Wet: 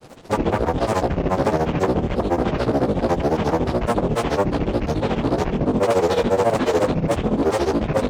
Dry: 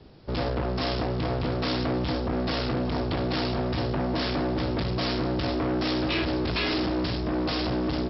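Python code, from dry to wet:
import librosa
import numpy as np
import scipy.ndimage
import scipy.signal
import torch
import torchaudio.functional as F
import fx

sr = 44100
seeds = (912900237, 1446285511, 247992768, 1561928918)

y = fx.delta_mod(x, sr, bps=64000, step_db=-46.0)
y = fx.granulator(y, sr, seeds[0], grain_ms=100.0, per_s=14.0, spray_ms=100.0, spread_st=12)
y = fx.peak_eq(y, sr, hz=590.0, db=7.5, octaves=2.2)
y = y * librosa.db_to_amplitude(6.0)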